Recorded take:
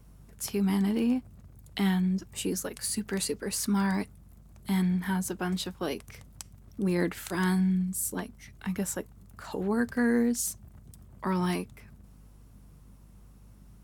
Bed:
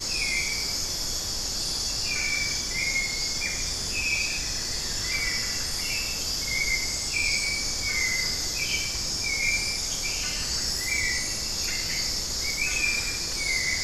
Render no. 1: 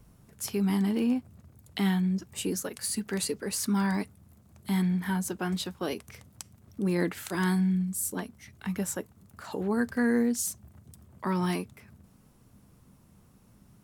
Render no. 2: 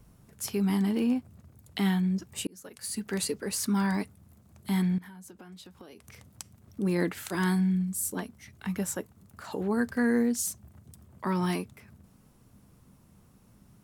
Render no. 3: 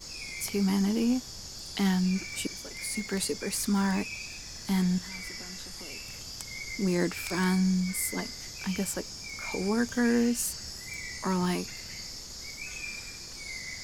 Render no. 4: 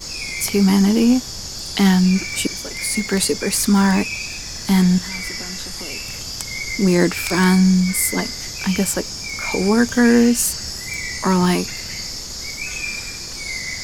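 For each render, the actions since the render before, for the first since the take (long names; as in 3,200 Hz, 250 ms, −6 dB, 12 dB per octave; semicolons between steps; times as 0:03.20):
hum removal 50 Hz, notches 3
0:02.47–0:03.13: fade in; 0:04.98–0:06.27: downward compressor 8 to 1, threshold −45 dBFS
mix in bed −13 dB
level +12 dB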